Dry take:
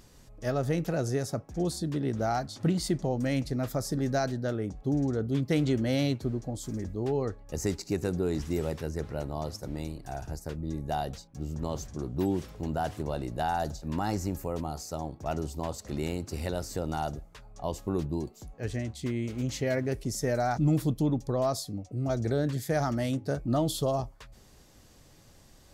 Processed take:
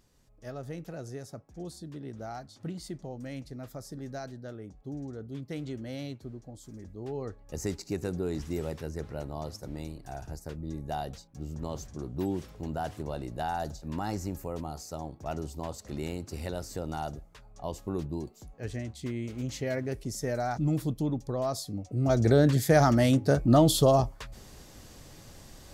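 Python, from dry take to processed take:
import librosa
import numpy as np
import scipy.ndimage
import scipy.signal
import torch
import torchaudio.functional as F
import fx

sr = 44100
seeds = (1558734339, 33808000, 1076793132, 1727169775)

y = fx.gain(x, sr, db=fx.line((6.77, -11.0), (7.55, -3.0), (21.45, -3.0), (22.31, 7.0)))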